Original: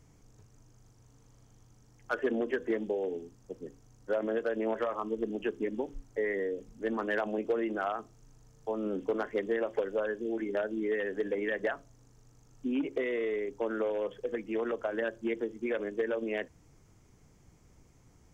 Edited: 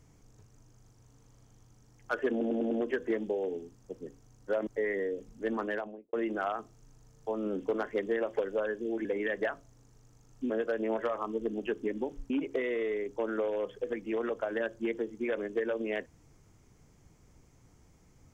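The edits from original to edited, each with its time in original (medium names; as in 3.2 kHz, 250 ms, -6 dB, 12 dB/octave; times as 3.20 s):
2.31 s: stutter 0.10 s, 5 plays
4.27–6.07 s: move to 12.72 s
6.96–7.53 s: studio fade out
10.45–11.27 s: delete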